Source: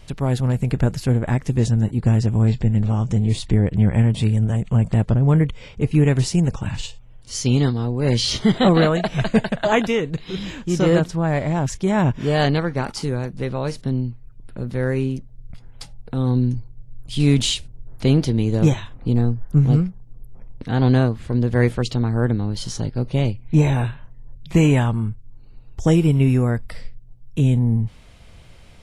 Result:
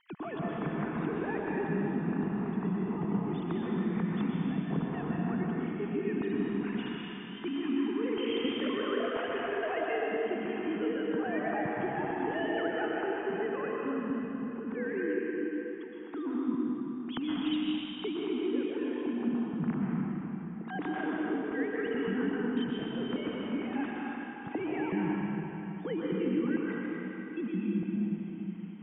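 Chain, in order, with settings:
three sine waves on the formant tracks
low-pass filter 2,500 Hz 12 dB per octave
parametric band 570 Hz −13 dB 0.34 octaves
downward compressor, threshold −25 dBFS, peak gain reduction 16.5 dB
dense smooth reverb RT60 3.8 s, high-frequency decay 0.95×, pre-delay 105 ms, DRR −4.5 dB
level −9 dB

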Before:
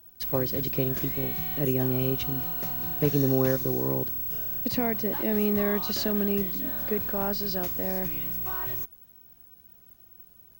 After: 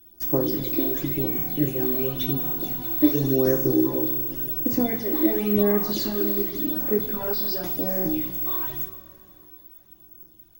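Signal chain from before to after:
hollow resonant body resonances 320/3,500 Hz, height 16 dB, ringing for 85 ms
all-pass phaser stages 12, 0.91 Hz, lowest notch 140–4,000 Hz
coupled-rooms reverb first 0.3 s, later 3.2 s, from −18 dB, DRR 0.5 dB

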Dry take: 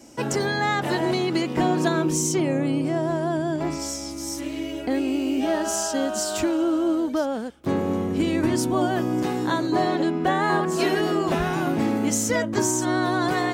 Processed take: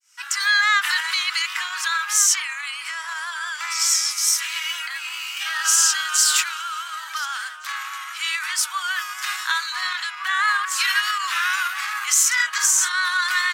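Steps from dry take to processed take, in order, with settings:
fade in at the beginning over 0.54 s
pitch vibrato 4.7 Hz 27 cents
0:12.27–0:12.94: double-tracking delay 42 ms −3.5 dB
in parallel at −11 dB: asymmetric clip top −21 dBFS
0:04.77–0:05.37: on the sum: downward compressor, threshold −24 dBFS, peak gain reduction 7 dB
slap from a distant wall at 250 metres, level −8 dB
automatic gain control gain up to 5 dB
brickwall limiter −12.5 dBFS, peak gain reduction 9 dB
Butterworth high-pass 1,200 Hz 48 dB per octave
level +8 dB

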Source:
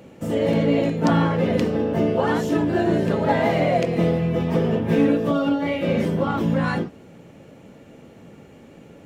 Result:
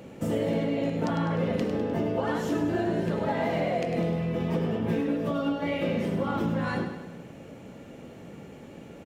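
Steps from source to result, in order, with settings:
downward compressor, threshold −25 dBFS, peak gain reduction 11.5 dB
on a send: repeating echo 101 ms, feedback 54%, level −8.5 dB

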